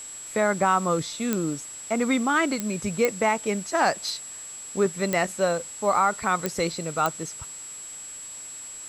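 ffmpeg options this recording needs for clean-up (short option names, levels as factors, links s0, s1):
-af "adeclick=t=4,bandreject=f=7700:w=30,afwtdn=0.0056"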